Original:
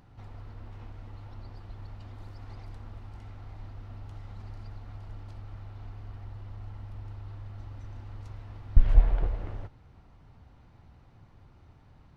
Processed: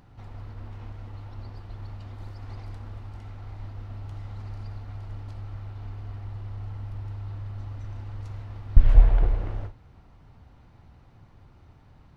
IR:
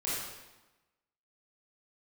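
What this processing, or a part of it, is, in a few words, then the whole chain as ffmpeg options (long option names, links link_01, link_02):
keyed gated reverb: -filter_complex "[0:a]asplit=3[link_01][link_02][link_03];[1:a]atrim=start_sample=2205[link_04];[link_02][link_04]afir=irnorm=-1:irlink=0[link_05];[link_03]apad=whole_len=536516[link_06];[link_05][link_06]sidechaingate=range=-33dB:threshold=-42dB:ratio=16:detection=peak,volume=-13.5dB[link_07];[link_01][link_07]amix=inputs=2:normalize=0,volume=2.5dB"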